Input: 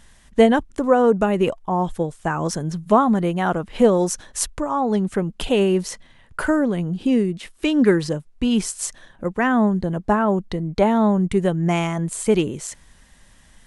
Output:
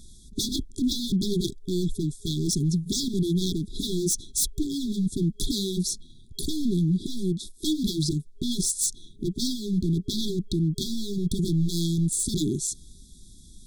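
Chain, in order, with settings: wavefolder -21 dBFS; FFT band-reject 410–3300 Hz; trim +3.5 dB

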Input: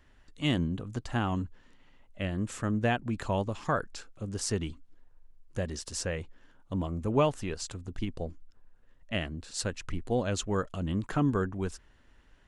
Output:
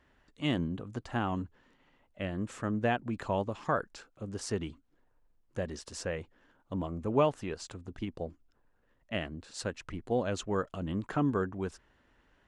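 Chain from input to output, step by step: high-pass 660 Hz 6 dB/octave; tilt EQ -3 dB/octave; trim +1 dB

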